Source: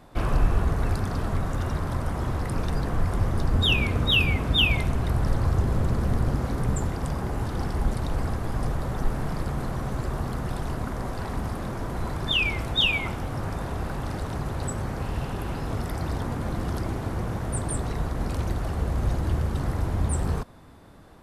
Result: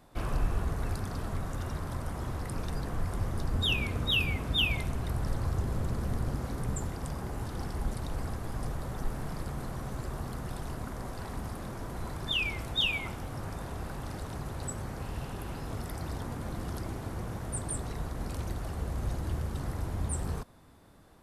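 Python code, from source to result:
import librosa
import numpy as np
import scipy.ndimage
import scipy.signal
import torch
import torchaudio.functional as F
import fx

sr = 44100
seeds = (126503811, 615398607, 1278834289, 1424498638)

y = fx.high_shelf(x, sr, hz=5300.0, db=7.0)
y = y * librosa.db_to_amplitude(-8.0)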